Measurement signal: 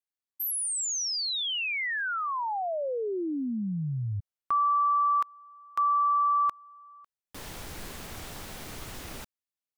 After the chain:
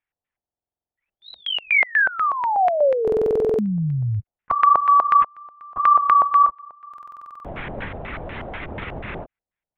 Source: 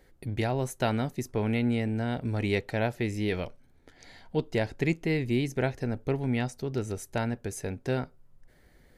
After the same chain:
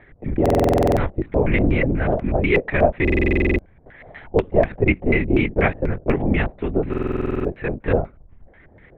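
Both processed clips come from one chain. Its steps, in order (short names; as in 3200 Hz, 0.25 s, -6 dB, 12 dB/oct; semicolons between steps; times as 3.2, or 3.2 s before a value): LPC vocoder at 8 kHz whisper; LFO low-pass square 4.1 Hz 680–2100 Hz; stuck buffer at 0.41/3.03/6.89, samples 2048, times 11; gain +8.5 dB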